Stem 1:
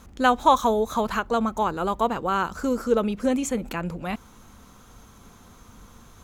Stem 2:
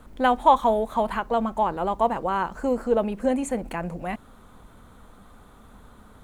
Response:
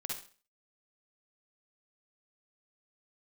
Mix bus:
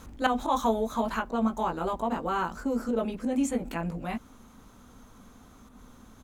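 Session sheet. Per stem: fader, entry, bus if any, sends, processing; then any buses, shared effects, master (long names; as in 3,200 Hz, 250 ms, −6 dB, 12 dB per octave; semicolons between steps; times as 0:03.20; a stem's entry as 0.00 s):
+1.0 dB, 0.00 s, no send, volume swells 113 ms; automatic ducking −8 dB, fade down 0.85 s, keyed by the second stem
−7.5 dB, 18 ms, no send, parametric band 250 Hz +10.5 dB 0.47 octaves; brickwall limiter −13.5 dBFS, peak gain reduction 8.5 dB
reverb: not used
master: no processing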